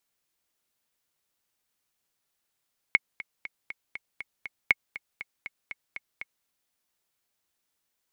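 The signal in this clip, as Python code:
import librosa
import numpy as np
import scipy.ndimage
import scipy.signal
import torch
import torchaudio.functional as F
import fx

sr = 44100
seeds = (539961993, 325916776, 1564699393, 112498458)

y = fx.click_track(sr, bpm=239, beats=7, bars=2, hz=2190.0, accent_db=17.5, level_db=-5.5)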